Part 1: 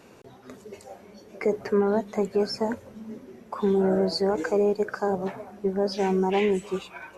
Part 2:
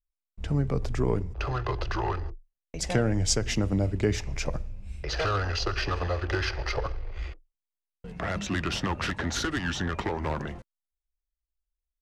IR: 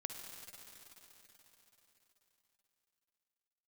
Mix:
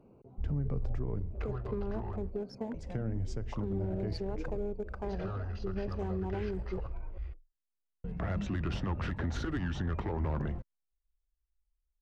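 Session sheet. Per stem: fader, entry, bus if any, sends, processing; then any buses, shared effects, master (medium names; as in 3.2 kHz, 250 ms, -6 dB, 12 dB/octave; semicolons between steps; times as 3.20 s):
-9.5 dB, 0.00 s, no send, local Wiener filter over 25 samples; treble shelf 3.9 kHz -7 dB; compression, threshold -26 dBFS, peak gain reduction 8.5 dB
-4.0 dB, 0.00 s, no send, low-pass 1.3 kHz 6 dB/octave; auto duck -11 dB, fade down 1.75 s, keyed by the first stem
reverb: none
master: bass shelf 190 Hz +10 dB; peak limiter -25.5 dBFS, peak gain reduction 8.5 dB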